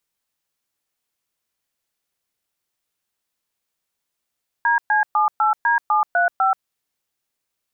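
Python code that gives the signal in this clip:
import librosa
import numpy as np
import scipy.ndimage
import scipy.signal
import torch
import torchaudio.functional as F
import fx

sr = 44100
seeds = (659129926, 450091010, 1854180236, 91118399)

y = fx.dtmf(sr, digits='DC78D735', tone_ms=131, gap_ms=119, level_db=-17.0)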